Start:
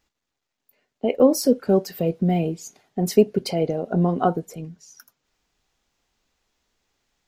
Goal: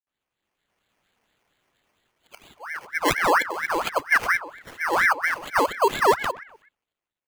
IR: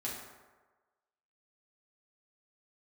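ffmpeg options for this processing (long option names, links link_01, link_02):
-filter_complex "[0:a]areverse,lowpass=frequency=3900:poles=1,aemphasis=mode=reproduction:type=bsi,afftfilt=real='re*(1-between(b*sr/4096,380,1000))':imag='im*(1-between(b*sr/4096,380,1000))':win_size=4096:overlap=0.75,highpass=frequency=280:poles=1,lowshelf=frequency=480:gain=-11.5,dynaudnorm=framelen=220:gausssize=7:maxgain=16dB,acrusher=samples=12:mix=1:aa=0.000001,asplit=2[link_01][link_02];[link_02]adelay=125,lowpass=frequency=1600:poles=1,volume=-16dB,asplit=2[link_03][link_04];[link_04]adelay=125,lowpass=frequency=1600:poles=1,volume=0.39,asplit=2[link_05][link_06];[link_06]adelay=125,lowpass=frequency=1600:poles=1,volume=0.39[link_07];[link_03][link_05][link_07]amix=inputs=3:normalize=0[link_08];[link_01][link_08]amix=inputs=2:normalize=0,aeval=exprs='val(0)*sin(2*PI*1300*n/s+1300*0.5/4.3*sin(2*PI*4.3*n/s))':channel_layout=same,volume=-3dB"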